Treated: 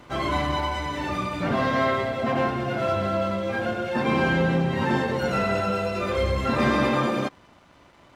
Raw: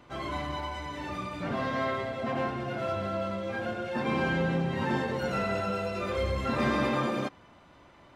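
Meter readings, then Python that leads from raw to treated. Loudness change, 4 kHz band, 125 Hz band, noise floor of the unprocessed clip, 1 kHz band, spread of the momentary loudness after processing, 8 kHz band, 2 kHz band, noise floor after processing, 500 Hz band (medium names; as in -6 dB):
+6.5 dB, +7.0 dB, +6.5 dB, -56 dBFS, +7.0 dB, 6 LU, +6.5 dB, +6.5 dB, -54 dBFS, +6.5 dB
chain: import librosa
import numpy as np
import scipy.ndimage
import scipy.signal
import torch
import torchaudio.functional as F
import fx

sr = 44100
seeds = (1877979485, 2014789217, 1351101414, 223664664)

p1 = fx.rider(x, sr, range_db=10, speed_s=2.0)
p2 = x + (p1 * 10.0 ** (1.0 / 20.0))
y = np.sign(p2) * np.maximum(np.abs(p2) - 10.0 ** (-56.0 / 20.0), 0.0)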